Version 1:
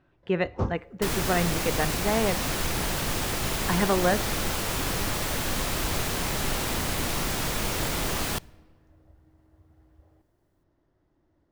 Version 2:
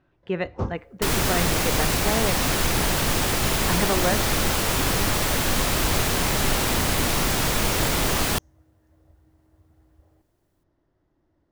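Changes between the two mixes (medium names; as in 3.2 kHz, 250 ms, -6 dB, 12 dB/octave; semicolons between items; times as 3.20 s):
second sound +7.5 dB; reverb: off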